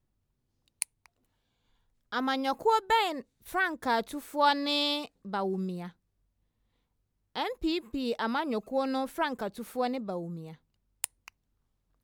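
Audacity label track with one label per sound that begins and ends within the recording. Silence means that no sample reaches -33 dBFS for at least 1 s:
2.130000	5.860000	sound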